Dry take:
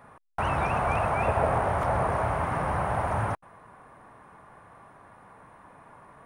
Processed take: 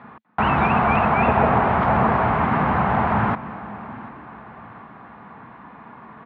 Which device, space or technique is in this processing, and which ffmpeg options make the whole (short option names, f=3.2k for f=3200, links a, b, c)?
frequency-shifting delay pedal into a guitar cabinet: -filter_complex "[0:a]asplit=6[a][b][c][d][e][f];[b]adelay=247,afreqshift=48,volume=-20dB[g];[c]adelay=494,afreqshift=96,volume=-24dB[h];[d]adelay=741,afreqshift=144,volume=-28dB[i];[e]adelay=988,afreqshift=192,volume=-32dB[j];[f]adelay=1235,afreqshift=240,volume=-36.1dB[k];[a][g][h][i][j][k]amix=inputs=6:normalize=0,lowpass=f=5.3k:w=0.5412,lowpass=f=5.3k:w=1.3066,highpass=75,equalizer=f=98:t=q:w=4:g=-8,equalizer=f=220:t=q:w=4:g=10,equalizer=f=570:t=q:w=4:g=-8,lowpass=f=3.8k:w=0.5412,lowpass=f=3.8k:w=1.3066,aecho=1:1:737|1474|2211|2948:0.112|0.0527|0.0248|0.0116,volume=9dB"